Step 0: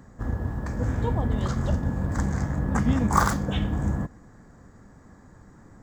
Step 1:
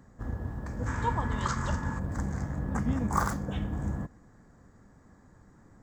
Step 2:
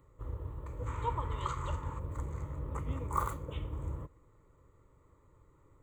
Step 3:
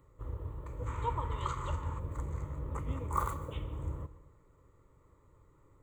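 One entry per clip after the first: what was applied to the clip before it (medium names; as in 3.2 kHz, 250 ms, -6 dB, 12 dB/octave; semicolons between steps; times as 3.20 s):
time-frequency box 0.86–1.99 s, 840–8300 Hz +12 dB; dynamic bell 3.5 kHz, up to -6 dB, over -47 dBFS, Q 1.2; trim -6.5 dB
static phaser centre 1.1 kHz, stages 8; trim -3 dB
reverberation RT60 0.75 s, pre-delay 120 ms, DRR 15 dB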